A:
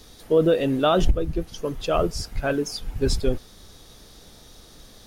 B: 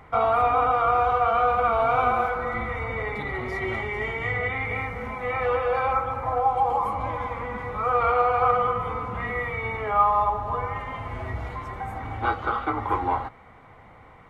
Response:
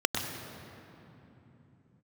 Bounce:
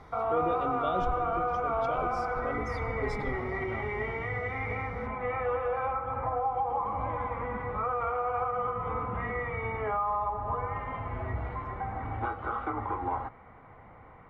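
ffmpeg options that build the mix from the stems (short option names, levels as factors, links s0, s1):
-filter_complex "[0:a]lowpass=f=2400:p=1,volume=0.158,asplit=2[s0][s1];[s1]volume=0.133[s2];[1:a]alimiter=limit=0.106:level=0:latency=1:release=234,lowpass=1900,volume=0.794[s3];[2:a]atrim=start_sample=2205[s4];[s2][s4]afir=irnorm=-1:irlink=0[s5];[s0][s3][s5]amix=inputs=3:normalize=0"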